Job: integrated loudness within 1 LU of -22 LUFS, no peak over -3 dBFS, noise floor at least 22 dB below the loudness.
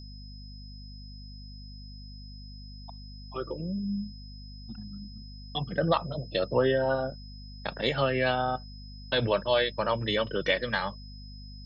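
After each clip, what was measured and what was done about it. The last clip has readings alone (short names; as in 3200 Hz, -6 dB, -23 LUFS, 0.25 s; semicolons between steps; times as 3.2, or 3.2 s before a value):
hum 50 Hz; harmonics up to 250 Hz; hum level -41 dBFS; steady tone 5100 Hz; tone level -50 dBFS; loudness -29.0 LUFS; peak -11.0 dBFS; loudness target -22.0 LUFS
-> de-hum 50 Hz, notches 5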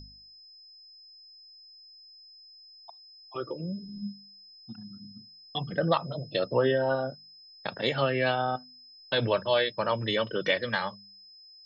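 hum none; steady tone 5100 Hz; tone level -50 dBFS
-> notch 5100 Hz, Q 30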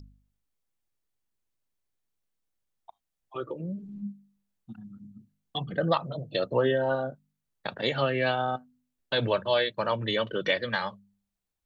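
steady tone none; loudness -29.0 LUFS; peak -11.0 dBFS; loudness target -22.0 LUFS
-> gain +7 dB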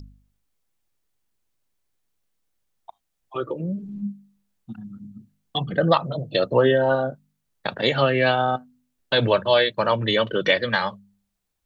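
loudness -22.0 LUFS; peak -4.0 dBFS; noise floor -77 dBFS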